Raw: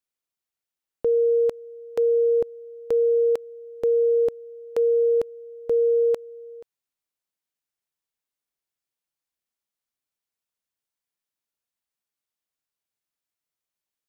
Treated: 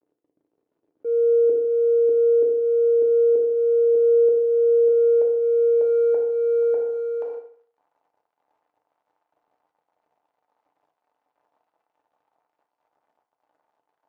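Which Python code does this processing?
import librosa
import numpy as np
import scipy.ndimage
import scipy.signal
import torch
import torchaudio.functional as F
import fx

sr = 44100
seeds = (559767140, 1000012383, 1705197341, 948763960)

y = scipy.ndimage.median_filter(x, 41, mode='constant')
y = fx.auto_swell(y, sr, attack_ms=292.0)
y = fx.filter_sweep_bandpass(y, sr, from_hz=380.0, to_hz=800.0, start_s=3.53, end_s=6.25, q=2.7)
y = y + 10.0 ** (-3.5 / 20.0) * np.pad(y, (int(597 * sr / 1000.0), 0))[:len(y)]
y = fx.rev_fdn(y, sr, rt60_s=0.51, lf_ratio=0.95, hf_ratio=0.9, size_ms=20.0, drr_db=3.5)
y = fx.env_flatten(y, sr, amount_pct=70)
y = F.gain(torch.from_numpy(y), -1.5).numpy()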